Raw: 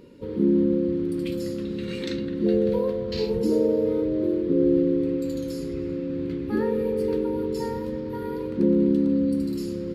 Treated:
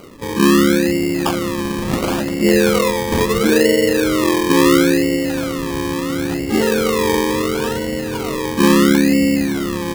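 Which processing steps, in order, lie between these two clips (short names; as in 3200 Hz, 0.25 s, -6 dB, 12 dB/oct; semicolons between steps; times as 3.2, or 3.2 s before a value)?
synth low-pass 3000 Hz, resonance Q 15; decimation with a swept rate 25×, swing 60% 0.73 Hz; gain +8 dB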